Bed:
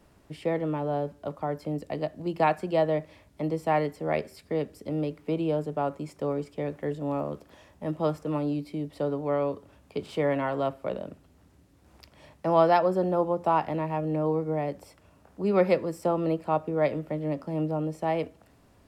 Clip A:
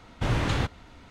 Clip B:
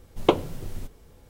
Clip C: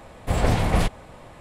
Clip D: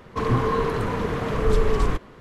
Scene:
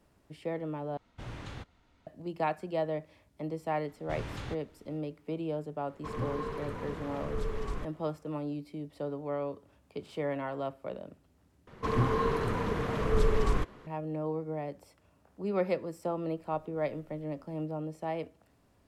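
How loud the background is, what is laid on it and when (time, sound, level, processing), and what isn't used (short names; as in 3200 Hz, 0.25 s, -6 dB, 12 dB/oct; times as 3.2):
bed -7.5 dB
0.97 replace with A -17 dB
3.88 add A -14 dB
5.88 add D -14.5 dB
11.67 replace with D -6 dB
16.37 add B -17.5 dB + compressor, threshold -42 dBFS
not used: C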